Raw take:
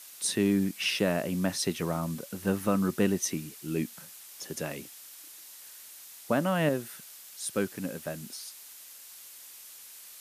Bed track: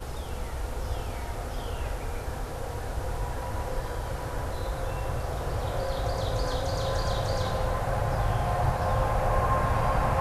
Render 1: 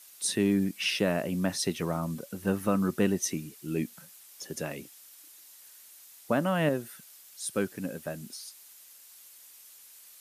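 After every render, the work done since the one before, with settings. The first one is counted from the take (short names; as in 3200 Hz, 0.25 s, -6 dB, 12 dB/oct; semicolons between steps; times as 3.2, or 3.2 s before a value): denoiser 6 dB, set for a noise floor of -49 dBFS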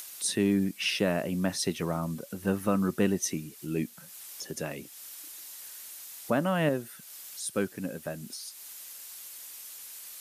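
upward compressor, threshold -35 dBFS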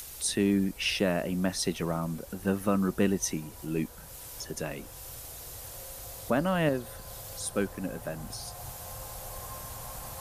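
add bed track -18.5 dB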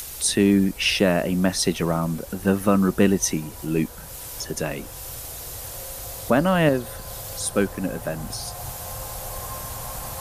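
gain +8 dB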